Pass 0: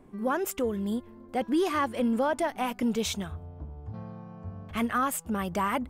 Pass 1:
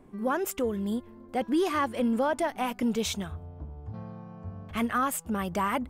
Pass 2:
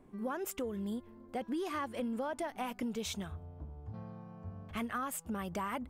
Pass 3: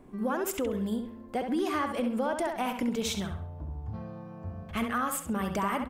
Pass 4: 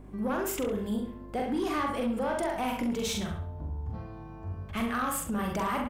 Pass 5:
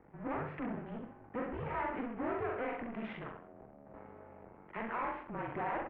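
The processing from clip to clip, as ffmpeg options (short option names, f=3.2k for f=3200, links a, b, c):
-af anull
-af "acompressor=threshold=-28dB:ratio=6,volume=-5.5dB"
-filter_complex "[0:a]asplit=2[a][b];[b]adelay=67,lowpass=f=4.5k:p=1,volume=-6dB,asplit=2[c][d];[d]adelay=67,lowpass=f=4.5k:p=1,volume=0.38,asplit=2[e][f];[f]adelay=67,lowpass=f=4.5k:p=1,volume=0.38,asplit=2[g][h];[h]adelay=67,lowpass=f=4.5k:p=1,volume=0.38,asplit=2[i][j];[j]adelay=67,lowpass=f=4.5k:p=1,volume=0.38[k];[a][c][e][g][i][k]amix=inputs=6:normalize=0,volume=6.5dB"
-filter_complex "[0:a]asplit=2[a][b];[b]adelay=43,volume=-3dB[c];[a][c]amix=inputs=2:normalize=0,asoftclip=type=tanh:threshold=-23dB,aeval=exprs='val(0)+0.00447*(sin(2*PI*50*n/s)+sin(2*PI*2*50*n/s)/2+sin(2*PI*3*50*n/s)/3+sin(2*PI*4*50*n/s)/4+sin(2*PI*5*50*n/s)/5)':c=same"
-af "aeval=exprs='max(val(0),0)':c=same,highpass=f=420:t=q:w=0.5412,highpass=f=420:t=q:w=1.307,lowpass=f=2.5k:t=q:w=0.5176,lowpass=f=2.5k:t=q:w=0.7071,lowpass=f=2.5k:t=q:w=1.932,afreqshift=-240"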